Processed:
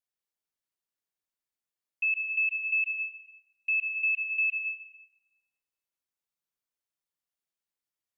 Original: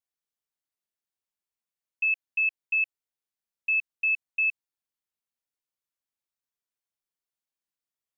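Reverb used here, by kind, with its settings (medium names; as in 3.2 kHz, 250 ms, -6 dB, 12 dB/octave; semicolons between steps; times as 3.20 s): plate-style reverb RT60 1.5 s, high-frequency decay 0.6×, pre-delay 115 ms, DRR 3.5 dB; trim -2.5 dB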